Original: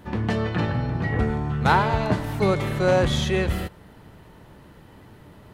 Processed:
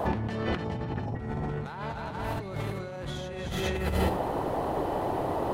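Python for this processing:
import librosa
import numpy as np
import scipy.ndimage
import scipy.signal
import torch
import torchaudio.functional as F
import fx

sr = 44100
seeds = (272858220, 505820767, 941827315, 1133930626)

y = fx.spec_erase(x, sr, start_s=0.65, length_s=0.5, low_hz=1000.0, high_hz=4900.0)
y = fx.echo_multitap(y, sr, ms=(241, 293, 413, 495), db=(-11.5, -7.5, -7.5, -18.5))
y = fx.dmg_noise_band(y, sr, seeds[0], low_hz=260.0, high_hz=930.0, level_db=-39.0)
y = fx.over_compress(y, sr, threshold_db=-32.0, ratio=-1.0)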